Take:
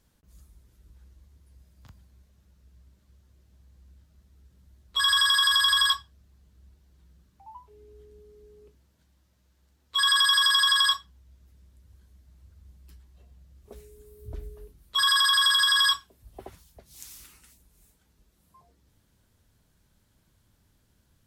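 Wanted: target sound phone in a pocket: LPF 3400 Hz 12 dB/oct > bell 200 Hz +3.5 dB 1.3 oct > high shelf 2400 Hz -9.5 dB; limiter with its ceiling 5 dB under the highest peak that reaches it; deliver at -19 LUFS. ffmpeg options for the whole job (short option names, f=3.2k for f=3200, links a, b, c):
-af "alimiter=limit=-15.5dB:level=0:latency=1,lowpass=3.4k,equalizer=f=200:t=o:w=1.3:g=3.5,highshelf=f=2.4k:g=-9.5,volume=11dB"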